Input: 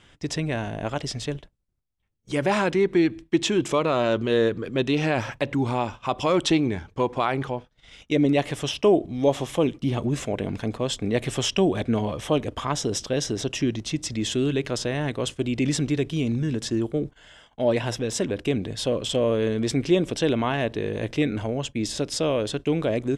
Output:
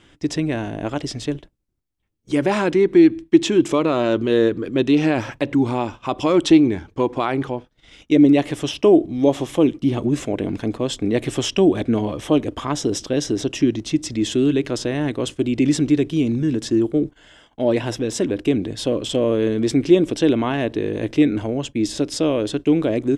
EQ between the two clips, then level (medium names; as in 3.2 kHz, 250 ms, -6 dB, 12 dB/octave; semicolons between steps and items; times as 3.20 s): peaking EQ 310 Hz +9 dB 0.64 oct; +1.0 dB